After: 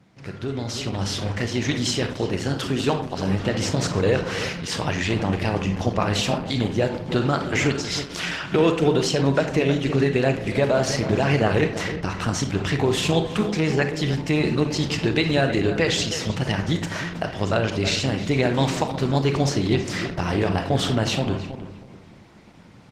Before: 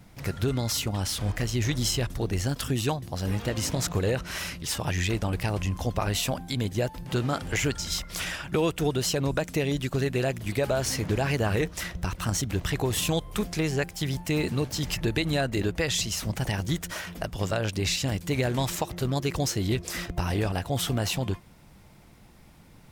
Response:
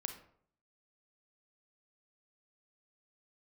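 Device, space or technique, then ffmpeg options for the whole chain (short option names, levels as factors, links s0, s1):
far-field microphone of a smart speaker: -filter_complex "[0:a]lowpass=5500,asplit=3[s0][s1][s2];[s0]afade=t=out:st=1.12:d=0.02[s3];[s1]lowshelf=f=150:g=-5.5,afade=t=in:st=1.12:d=0.02,afade=t=out:st=3.17:d=0.02[s4];[s2]afade=t=in:st=3.17:d=0.02[s5];[s3][s4][s5]amix=inputs=3:normalize=0,asplit=2[s6][s7];[s7]adelay=318,lowpass=f=2100:p=1,volume=0.299,asplit=2[s8][s9];[s9]adelay=318,lowpass=f=2100:p=1,volume=0.28,asplit=2[s10][s11];[s11]adelay=318,lowpass=f=2100:p=1,volume=0.28[s12];[s6][s8][s10][s12]amix=inputs=4:normalize=0[s13];[1:a]atrim=start_sample=2205[s14];[s13][s14]afir=irnorm=-1:irlink=0,highpass=120,dynaudnorm=f=370:g=5:m=2.82" -ar 48000 -c:a libopus -b:a 16k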